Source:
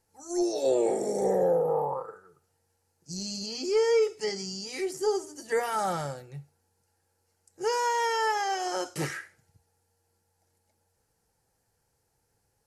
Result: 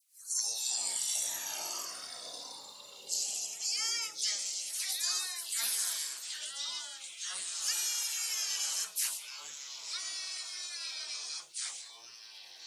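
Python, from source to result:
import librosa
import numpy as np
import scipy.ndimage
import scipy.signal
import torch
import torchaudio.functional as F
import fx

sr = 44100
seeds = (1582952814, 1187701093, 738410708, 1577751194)

p1 = fx.spec_gate(x, sr, threshold_db=-20, keep='weak')
p2 = np.diff(p1, prepend=0.0)
p3 = fx.rider(p2, sr, range_db=10, speed_s=0.5)
p4 = p2 + (p3 * librosa.db_to_amplitude(1.0))
p5 = fx.dispersion(p4, sr, late='lows', ms=104.0, hz=1200.0)
p6 = fx.echo_pitch(p5, sr, ms=256, semitones=-4, count=3, db_per_echo=-6.0)
y = p6 * librosa.db_to_amplitude(4.5)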